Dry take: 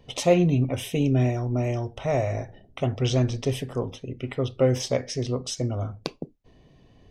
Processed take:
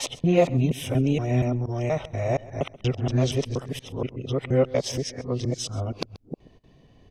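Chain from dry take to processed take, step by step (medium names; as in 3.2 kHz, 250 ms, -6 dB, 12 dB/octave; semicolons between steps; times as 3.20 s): time reversed locally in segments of 237 ms; delay 132 ms -20 dB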